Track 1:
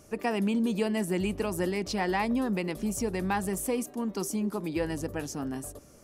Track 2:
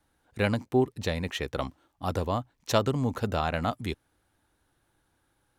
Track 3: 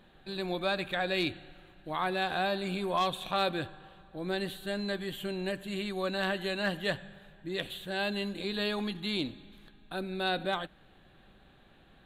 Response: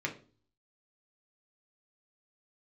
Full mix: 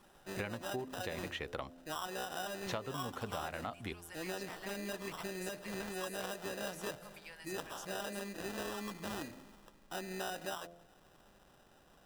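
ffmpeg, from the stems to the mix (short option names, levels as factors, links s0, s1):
-filter_complex "[0:a]highpass=1400,acompressor=threshold=0.0141:ratio=6,adelay=2500,volume=0.376[s0];[1:a]acrossover=split=3300[s1][s2];[s2]acompressor=threshold=0.00398:ratio=4:attack=1:release=60[s3];[s1][s3]amix=inputs=2:normalize=0,volume=1.41,asplit=3[s4][s5][s6];[s4]atrim=end=1.81,asetpts=PTS-STARTPTS,afade=t=out:st=1.806:d=0.004:c=hsin[s7];[s5]atrim=start=1.81:end=2.67,asetpts=PTS-STARTPTS,volume=0[s8];[s6]atrim=start=2.67,asetpts=PTS-STARTPTS,afade=t=in:d=0.004:c=hsin[s9];[s7][s8][s9]concat=n=3:v=0:a=1[s10];[2:a]acrusher=samples=20:mix=1:aa=0.000001,volume=0.944[s11];[s0][s10][s11]amix=inputs=3:normalize=0,lowshelf=f=390:g=-7.5,bandreject=f=86.29:t=h:w=4,bandreject=f=172.58:t=h:w=4,bandreject=f=258.87:t=h:w=4,bandreject=f=345.16:t=h:w=4,bandreject=f=431.45:t=h:w=4,bandreject=f=517.74:t=h:w=4,bandreject=f=604.03:t=h:w=4,bandreject=f=690.32:t=h:w=4,acompressor=threshold=0.0141:ratio=8"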